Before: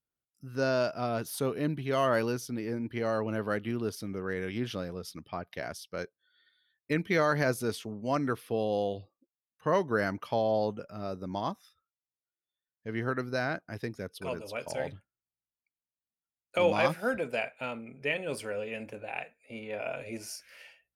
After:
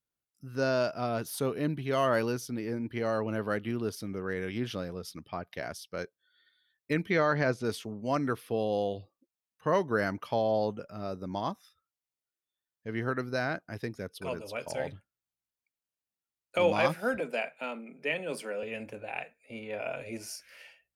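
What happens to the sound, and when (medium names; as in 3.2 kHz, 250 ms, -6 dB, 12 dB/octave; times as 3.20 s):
7.10–7.65 s: low-pass 4.4 kHz
17.20–18.63 s: Chebyshev high-pass 150 Hz, order 8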